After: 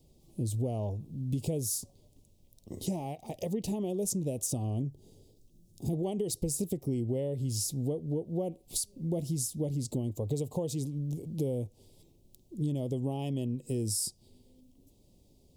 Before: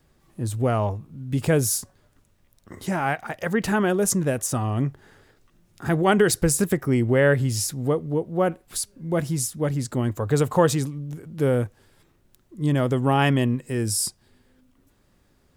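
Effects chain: 4.82–5.93 s: peaking EQ 1.5 kHz -14.5 dB 2 oct; compression 6:1, threshold -29 dBFS, peak gain reduction 15.5 dB; Butterworth band-stop 1.5 kHz, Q 0.52

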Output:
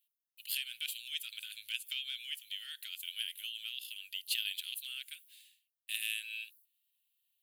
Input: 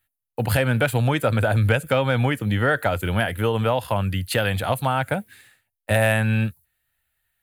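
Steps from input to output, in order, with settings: elliptic high-pass 2.9 kHz, stop band 70 dB; peaking EQ 7.9 kHz -8.5 dB 1.7 oct

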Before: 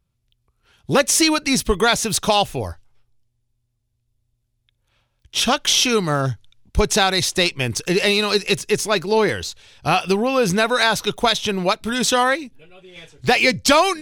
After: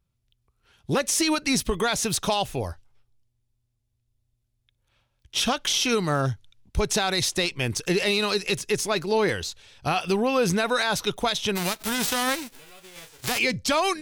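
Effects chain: 11.55–13.37 s: formants flattened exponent 0.3; peak limiter -10 dBFS, peak gain reduction 9.5 dB; trim -3.5 dB

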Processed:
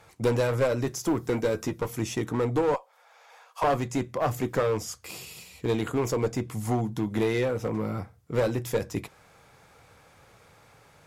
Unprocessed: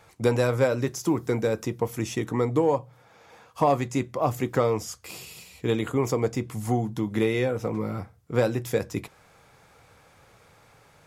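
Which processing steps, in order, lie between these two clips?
2.74–3.64 s: high-pass 600 Hz 24 dB/octave; one-sided clip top -23 dBFS; 1.31–1.87 s: doubling 12 ms -6 dB

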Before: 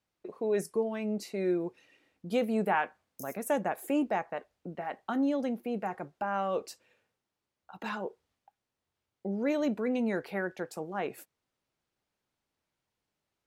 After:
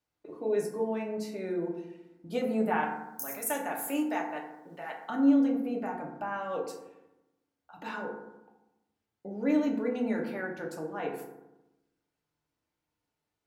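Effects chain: 2.83–5.10 s: tilt EQ +3.5 dB/octave; FDN reverb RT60 0.95 s, low-frequency decay 1.3×, high-frequency decay 0.4×, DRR -1 dB; trim -4.5 dB

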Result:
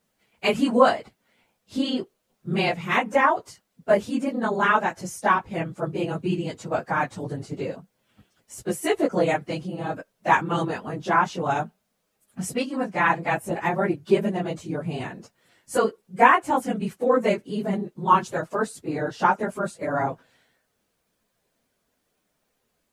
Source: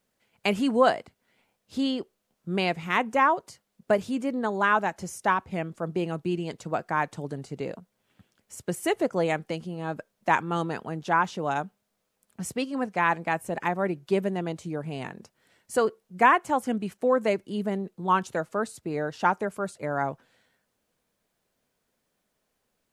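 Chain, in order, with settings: phase randomisation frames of 50 ms; trim +3 dB

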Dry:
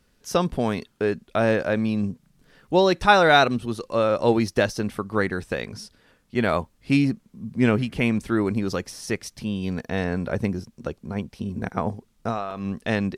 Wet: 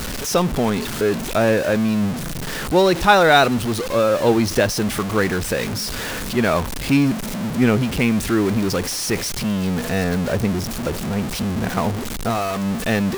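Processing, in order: jump at every zero crossing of -22.5 dBFS; trim +1.5 dB

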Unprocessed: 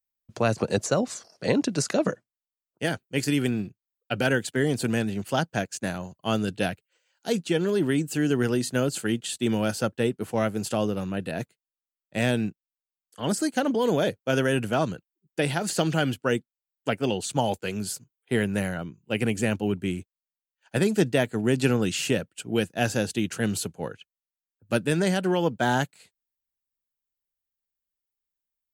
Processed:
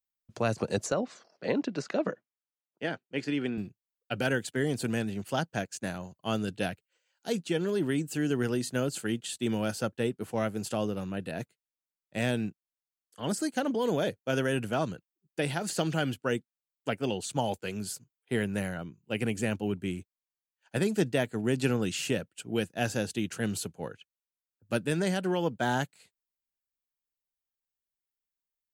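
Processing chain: 0.92–3.58 s: band-pass 190–3400 Hz; trim -5 dB

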